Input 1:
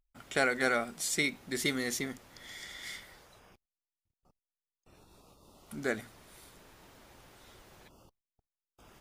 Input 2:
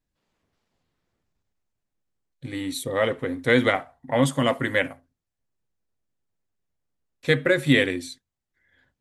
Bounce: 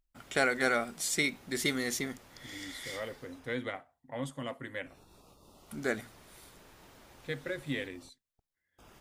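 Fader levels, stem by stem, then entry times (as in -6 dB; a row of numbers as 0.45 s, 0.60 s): +0.5 dB, -17.0 dB; 0.00 s, 0.00 s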